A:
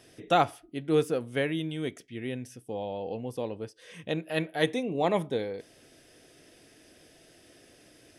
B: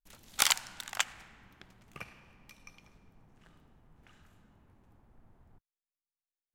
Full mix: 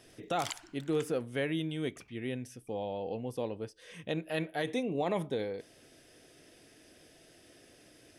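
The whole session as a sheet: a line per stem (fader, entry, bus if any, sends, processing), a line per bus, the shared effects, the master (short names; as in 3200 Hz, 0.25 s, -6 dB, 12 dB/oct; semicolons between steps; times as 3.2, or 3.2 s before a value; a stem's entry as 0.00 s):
-2.0 dB, 0.00 s, no send, dry
-1.5 dB, 0.00 s, no send, formant sharpening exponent 1.5; gate -50 dBFS, range -9 dB; auto duck -11 dB, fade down 0.75 s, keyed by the first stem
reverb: off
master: limiter -22.5 dBFS, peak gain reduction 11.5 dB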